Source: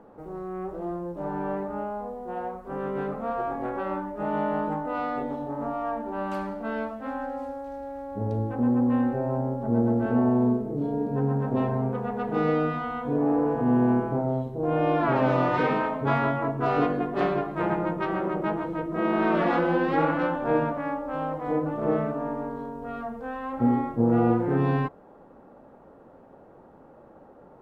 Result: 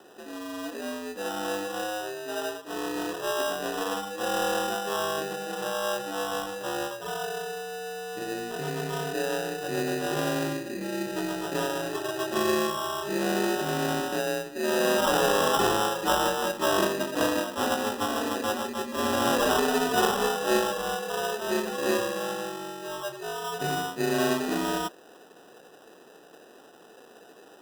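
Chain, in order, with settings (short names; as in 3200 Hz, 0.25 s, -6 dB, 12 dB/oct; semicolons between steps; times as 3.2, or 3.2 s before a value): mistuned SSB -94 Hz 390–3200 Hz; sample-rate reducer 2200 Hz, jitter 0%; gain +1.5 dB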